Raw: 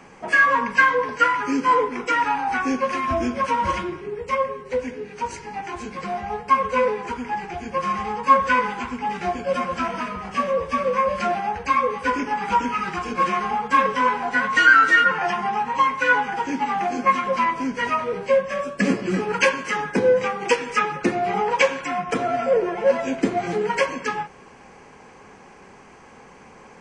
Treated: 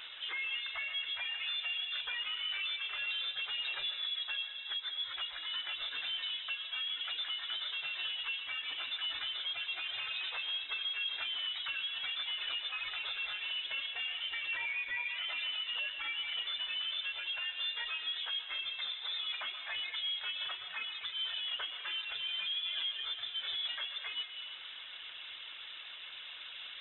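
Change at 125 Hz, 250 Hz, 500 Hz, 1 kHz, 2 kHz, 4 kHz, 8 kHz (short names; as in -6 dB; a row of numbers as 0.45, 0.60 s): under -35 dB, under -40 dB, -39.0 dB, -31.5 dB, -16.5 dB, +4.0 dB, under -40 dB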